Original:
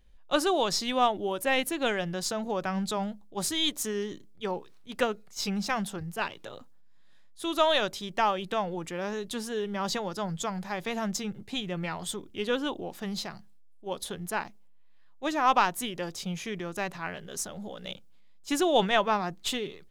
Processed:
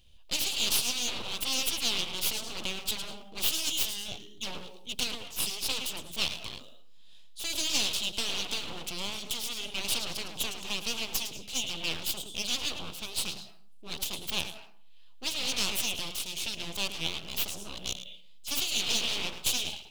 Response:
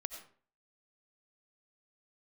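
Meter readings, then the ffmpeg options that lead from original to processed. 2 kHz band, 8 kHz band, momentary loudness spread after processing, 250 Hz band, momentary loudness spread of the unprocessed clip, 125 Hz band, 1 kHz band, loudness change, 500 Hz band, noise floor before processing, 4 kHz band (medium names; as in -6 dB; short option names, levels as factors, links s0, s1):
-3.0 dB, +5.5 dB, 11 LU, -11.5 dB, 12 LU, -8.5 dB, -15.0 dB, -1.0 dB, -14.5 dB, -51 dBFS, +5.0 dB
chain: -filter_complex "[0:a]asplit=2[s0][s1];[1:a]atrim=start_sample=2205,adelay=108[s2];[s1][s2]afir=irnorm=-1:irlink=0,volume=0.282[s3];[s0][s3]amix=inputs=2:normalize=0,afftfilt=real='re*lt(hypot(re,im),0.141)':imag='im*lt(hypot(re,im),0.141)':win_size=1024:overlap=0.75,aeval=exprs='abs(val(0))':c=same,highshelf=f=2300:t=q:w=3:g=8"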